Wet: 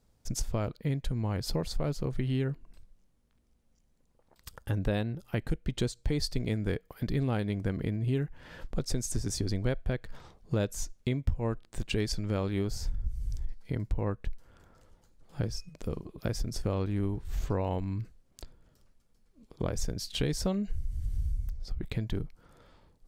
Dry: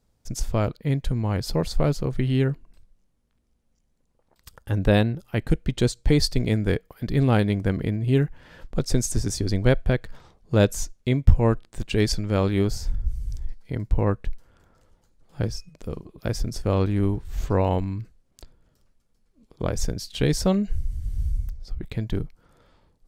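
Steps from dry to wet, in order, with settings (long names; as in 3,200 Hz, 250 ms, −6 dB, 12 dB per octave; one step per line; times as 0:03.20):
downward compressor 3 to 1, threshold −29 dBFS, peak gain reduction 16.5 dB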